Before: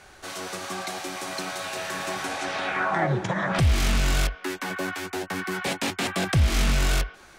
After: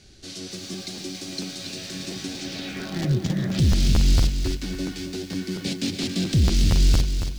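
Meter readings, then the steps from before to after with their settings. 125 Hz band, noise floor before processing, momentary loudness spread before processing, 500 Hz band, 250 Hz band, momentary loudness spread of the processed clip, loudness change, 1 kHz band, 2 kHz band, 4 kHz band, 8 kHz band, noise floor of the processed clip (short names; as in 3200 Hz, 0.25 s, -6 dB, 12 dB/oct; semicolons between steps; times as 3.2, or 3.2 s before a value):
+4.0 dB, -50 dBFS, 10 LU, -4.0 dB, +5.0 dB, 13 LU, +1.5 dB, -13.5 dB, -9.5 dB, +2.0 dB, 0.0 dB, -39 dBFS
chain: in parallel at -7 dB: wrapped overs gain 17 dB; on the sum: EQ curve 280 Hz 0 dB, 1000 Hz -27 dB, 4700 Hz 0 dB, 12000 Hz -15 dB; crackling interface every 0.23 s, samples 512, repeat, from 0.72; lo-fi delay 0.278 s, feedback 35%, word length 8-bit, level -7.5 dB; gain +2 dB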